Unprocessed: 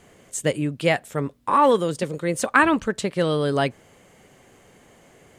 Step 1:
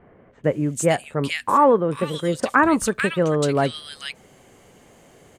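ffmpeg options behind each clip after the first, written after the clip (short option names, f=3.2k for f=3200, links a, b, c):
-filter_complex "[0:a]acrossover=split=1900[a][b];[b]adelay=440[c];[a][c]amix=inputs=2:normalize=0,volume=2dB"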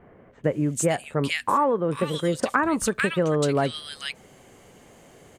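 -af "acompressor=threshold=-18dB:ratio=6"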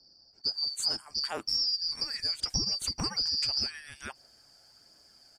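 -af "afftfilt=real='real(if(lt(b,272),68*(eq(floor(b/68),0)*1+eq(floor(b/68),1)*2+eq(floor(b/68),2)*3+eq(floor(b/68),3)*0)+mod(b,68),b),0)':imag='imag(if(lt(b,272),68*(eq(floor(b/68),0)*1+eq(floor(b/68),1)*2+eq(floor(b/68),2)*3+eq(floor(b/68),3)*0)+mod(b,68),b),0)':win_size=2048:overlap=0.75,aphaser=in_gain=1:out_gain=1:delay=1.5:decay=0.26:speed=1.4:type=triangular,volume=-8.5dB"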